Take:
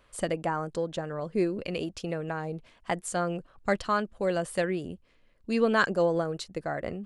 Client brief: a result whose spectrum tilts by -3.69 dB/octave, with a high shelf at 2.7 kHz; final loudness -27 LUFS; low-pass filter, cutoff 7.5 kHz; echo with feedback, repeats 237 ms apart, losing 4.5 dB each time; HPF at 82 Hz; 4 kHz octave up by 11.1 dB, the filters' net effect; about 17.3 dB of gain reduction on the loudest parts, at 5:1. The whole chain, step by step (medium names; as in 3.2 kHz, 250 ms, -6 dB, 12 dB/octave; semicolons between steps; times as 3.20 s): high-pass 82 Hz; low-pass 7.5 kHz; treble shelf 2.7 kHz +7 dB; peaking EQ 4 kHz +8.5 dB; compression 5:1, threshold -37 dBFS; feedback delay 237 ms, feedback 60%, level -4.5 dB; trim +11.5 dB